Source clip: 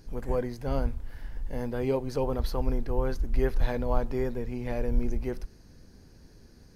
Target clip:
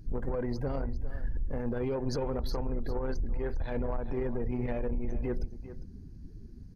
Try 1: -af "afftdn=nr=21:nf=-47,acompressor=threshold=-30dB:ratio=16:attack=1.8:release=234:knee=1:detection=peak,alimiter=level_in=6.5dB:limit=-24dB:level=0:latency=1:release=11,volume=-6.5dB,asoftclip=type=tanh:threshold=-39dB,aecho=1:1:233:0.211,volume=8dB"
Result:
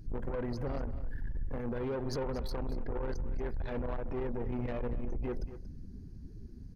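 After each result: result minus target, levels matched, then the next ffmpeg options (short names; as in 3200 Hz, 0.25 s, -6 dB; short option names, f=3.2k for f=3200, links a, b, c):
echo 0.169 s early; soft clip: distortion +9 dB
-af "afftdn=nr=21:nf=-47,acompressor=threshold=-30dB:ratio=16:attack=1.8:release=234:knee=1:detection=peak,alimiter=level_in=6.5dB:limit=-24dB:level=0:latency=1:release=11,volume=-6.5dB,asoftclip=type=tanh:threshold=-39dB,aecho=1:1:402:0.211,volume=8dB"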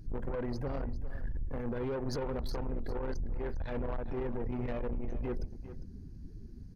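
soft clip: distortion +9 dB
-af "afftdn=nr=21:nf=-47,acompressor=threshold=-30dB:ratio=16:attack=1.8:release=234:knee=1:detection=peak,alimiter=level_in=6.5dB:limit=-24dB:level=0:latency=1:release=11,volume=-6.5dB,asoftclip=type=tanh:threshold=-32dB,aecho=1:1:402:0.211,volume=8dB"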